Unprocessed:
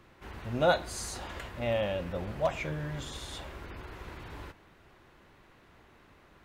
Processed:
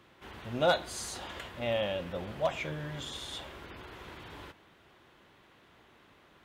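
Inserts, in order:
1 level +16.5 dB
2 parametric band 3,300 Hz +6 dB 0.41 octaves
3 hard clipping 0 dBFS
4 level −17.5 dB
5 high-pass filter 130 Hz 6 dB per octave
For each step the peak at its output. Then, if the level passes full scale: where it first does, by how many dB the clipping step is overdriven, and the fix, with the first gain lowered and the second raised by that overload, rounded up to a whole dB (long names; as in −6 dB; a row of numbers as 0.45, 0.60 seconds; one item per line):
+3.0, +4.0, 0.0, −17.5, −15.5 dBFS
step 1, 4.0 dB
step 1 +12.5 dB, step 4 −13.5 dB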